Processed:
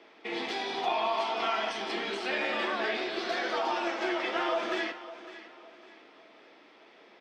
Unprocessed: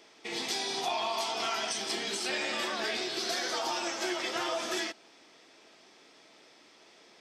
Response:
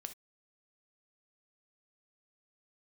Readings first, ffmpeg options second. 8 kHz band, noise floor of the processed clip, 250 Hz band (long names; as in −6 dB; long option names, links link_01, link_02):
−15.0 dB, −57 dBFS, +3.0 dB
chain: -filter_complex "[0:a]aeval=exprs='0.119*(cos(1*acos(clip(val(0)/0.119,-1,1)))-cos(1*PI/2))+0.00133*(cos(6*acos(clip(val(0)/0.119,-1,1)))-cos(6*PI/2))':channel_layout=same,acrossover=split=180 4700:gain=0.2 1 0.141[link_01][link_02][link_03];[link_01][link_02][link_03]amix=inputs=3:normalize=0,aecho=1:1:556|1112|1668:0.178|0.0622|0.0218,asplit=2[link_04][link_05];[1:a]atrim=start_sample=2205,lowpass=3500[link_06];[link_05][link_06]afir=irnorm=-1:irlink=0,volume=6.5dB[link_07];[link_04][link_07]amix=inputs=2:normalize=0,volume=-3.5dB"